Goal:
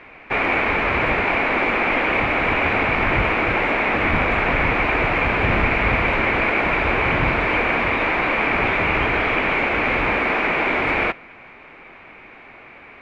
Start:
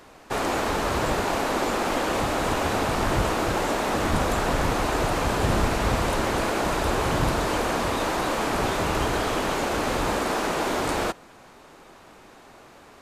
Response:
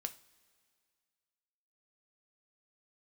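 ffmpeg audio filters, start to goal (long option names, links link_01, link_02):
-filter_complex "[0:a]lowpass=frequency=2300:width_type=q:width=7.2,asplit=2[link_01][link_02];[1:a]atrim=start_sample=2205,lowpass=frequency=6900:width=0.5412,lowpass=frequency=6900:width=1.3066[link_03];[link_02][link_03]afir=irnorm=-1:irlink=0,volume=-9dB[link_04];[link_01][link_04]amix=inputs=2:normalize=0"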